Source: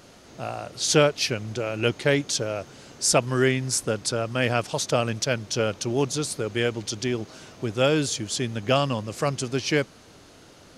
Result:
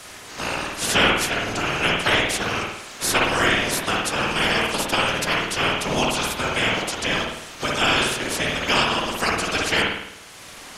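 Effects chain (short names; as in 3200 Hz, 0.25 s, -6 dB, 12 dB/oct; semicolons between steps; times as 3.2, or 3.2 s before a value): spectral limiter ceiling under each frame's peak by 25 dB; whisperiser; reverb, pre-delay 52 ms, DRR -1.5 dB; three-band squash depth 40%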